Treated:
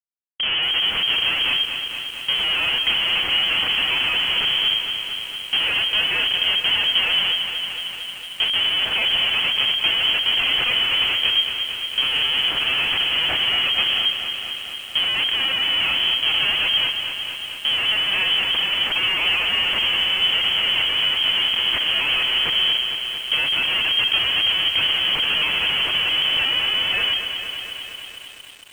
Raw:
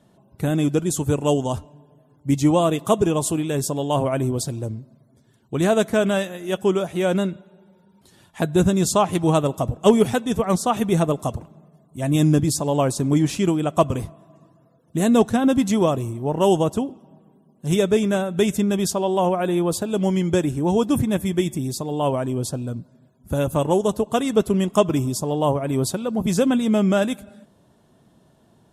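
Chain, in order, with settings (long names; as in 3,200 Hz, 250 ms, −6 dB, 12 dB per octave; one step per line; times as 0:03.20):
high-pass filter 93 Hz 12 dB per octave
comparator with hysteresis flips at −28 dBFS
on a send at −14 dB: convolution reverb RT60 0.30 s, pre-delay 5 ms
on the sum: voice inversion scrambler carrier 3,200 Hz
feedback echo at a low word length 227 ms, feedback 80%, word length 7 bits, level −8 dB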